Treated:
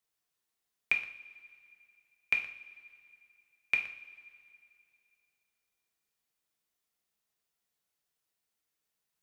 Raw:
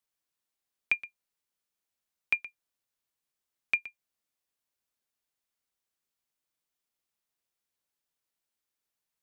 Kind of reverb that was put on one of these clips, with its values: two-slope reverb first 0.47 s, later 2.6 s, from -19 dB, DRR 2 dB

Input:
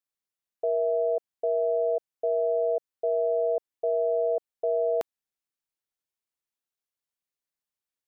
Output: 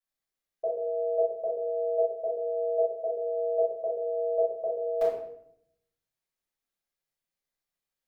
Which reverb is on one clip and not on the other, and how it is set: shoebox room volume 160 m³, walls mixed, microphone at 5.9 m; gain -13.5 dB

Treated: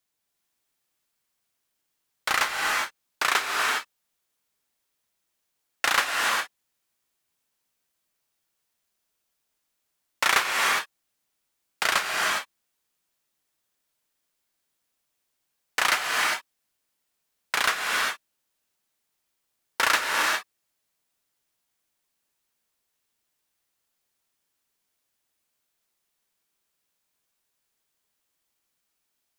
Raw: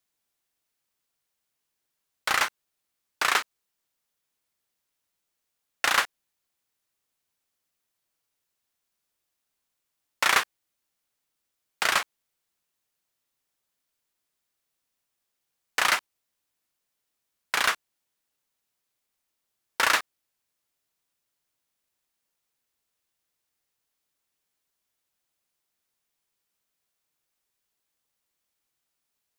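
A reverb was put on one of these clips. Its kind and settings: non-linear reverb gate 0.43 s rising, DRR 0 dB

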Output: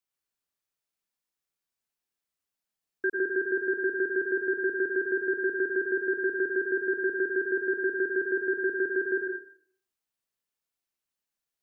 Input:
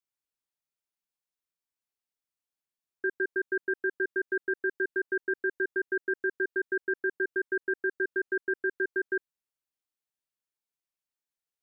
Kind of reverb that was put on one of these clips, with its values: plate-style reverb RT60 0.56 s, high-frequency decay 0.85×, pre-delay 85 ms, DRR 2 dB; gain +1.5 dB

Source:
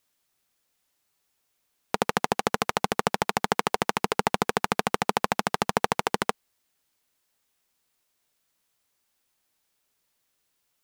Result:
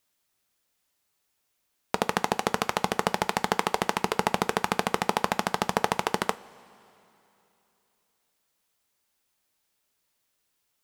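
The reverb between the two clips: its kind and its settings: two-slope reverb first 0.26 s, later 3.1 s, from -18 dB, DRR 12.5 dB; gain -1 dB

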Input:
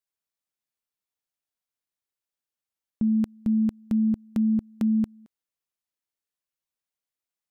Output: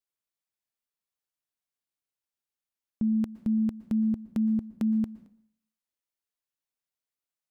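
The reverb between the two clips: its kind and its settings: plate-style reverb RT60 0.59 s, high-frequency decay 0.85×, pre-delay 0.105 s, DRR 16 dB; gain -3 dB

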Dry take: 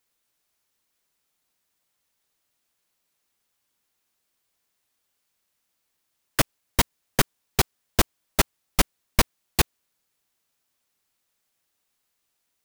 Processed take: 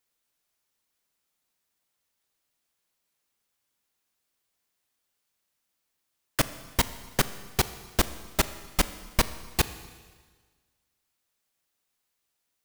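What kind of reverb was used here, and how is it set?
Schroeder reverb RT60 1.5 s, combs from 27 ms, DRR 13 dB; gain -3.5 dB

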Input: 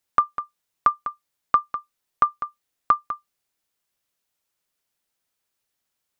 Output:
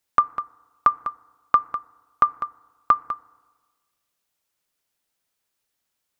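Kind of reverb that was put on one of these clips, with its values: FDN reverb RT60 1.4 s, low-frequency decay 1×, high-frequency decay 0.3×, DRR 19.5 dB; gain +1 dB

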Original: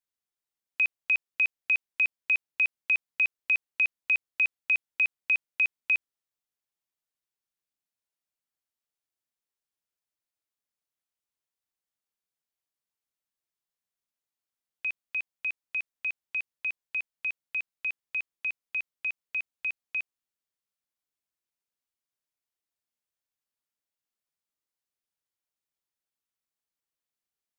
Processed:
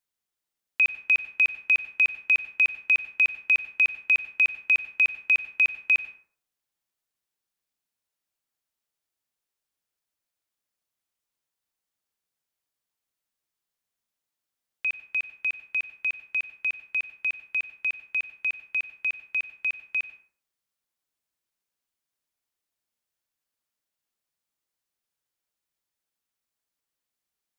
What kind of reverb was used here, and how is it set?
plate-style reverb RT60 0.52 s, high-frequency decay 0.55×, pre-delay 80 ms, DRR 12 dB; gain +4 dB

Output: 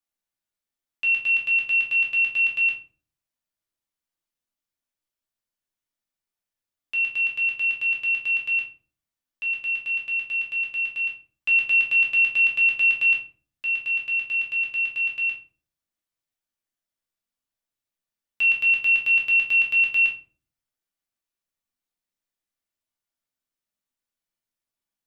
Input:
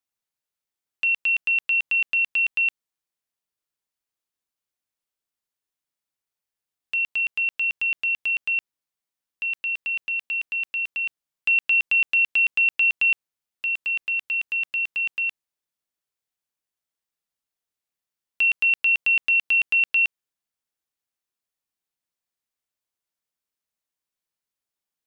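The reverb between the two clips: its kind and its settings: shoebox room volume 260 m³, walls furnished, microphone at 2.5 m; gain -5.5 dB

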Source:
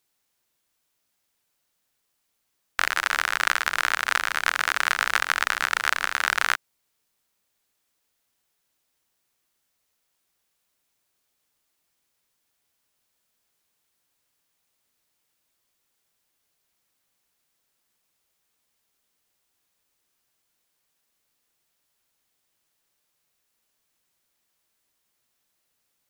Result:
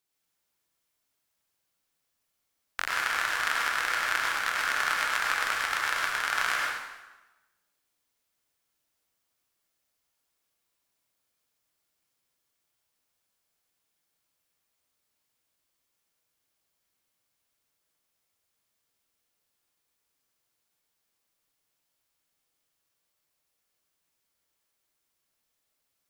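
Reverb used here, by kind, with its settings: plate-style reverb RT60 1.1 s, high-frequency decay 0.85×, pre-delay 85 ms, DRR -3 dB; gain -8.5 dB

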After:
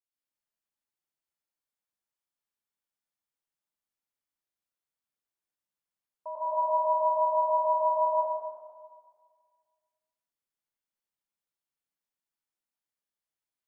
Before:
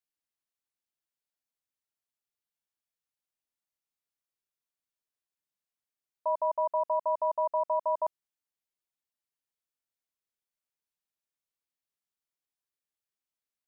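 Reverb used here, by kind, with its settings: plate-style reverb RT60 1.8 s, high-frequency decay 0.5×, pre-delay 95 ms, DRR -8.5 dB; gain -9.5 dB

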